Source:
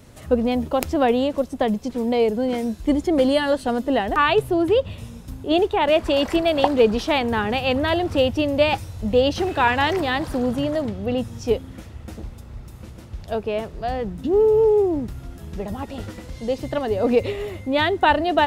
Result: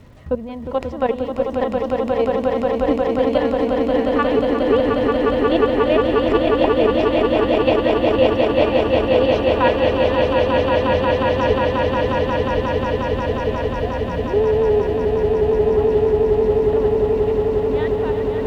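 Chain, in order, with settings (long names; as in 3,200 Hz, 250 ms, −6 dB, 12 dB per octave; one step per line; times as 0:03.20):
fade-out on the ending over 3.18 s
low-pass filter 3,600 Hz 12 dB per octave
low-shelf EQ 180 Hz +5 dB
notch filter 560 Hz, Q 12
in parallel at +0.5 dB: downward compressor 6 to 1, threshold −30 dBFS, peak gain reduction 18 dB
on the sum: hollow resonant body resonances 550/1,000/1,900 Hz, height 10 dB, ringing for 75 ms
output level in coarse steps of 14 dB
surface crackle 440 per second −50 dBFS
echo that builds up and dies away 179 ms, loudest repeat 8, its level −4.5 dB
level −2.5 dB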